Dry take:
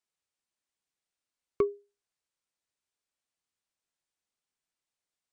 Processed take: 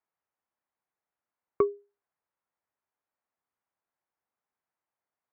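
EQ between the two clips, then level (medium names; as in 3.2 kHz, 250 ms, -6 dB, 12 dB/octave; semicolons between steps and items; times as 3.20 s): high-pass 57 Hz; low-pass 2.1 kHz 24 dB/octave; peaking EQ 880 Hz +7.5 dB 1.4 oct; 0.0 dB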